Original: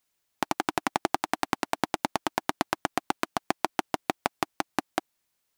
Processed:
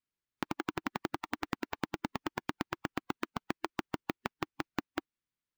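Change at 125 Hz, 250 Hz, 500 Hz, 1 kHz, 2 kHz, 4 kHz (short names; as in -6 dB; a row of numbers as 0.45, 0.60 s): -2.0, -4.5, -9.0, -11.5, -7.5, -9.5 dB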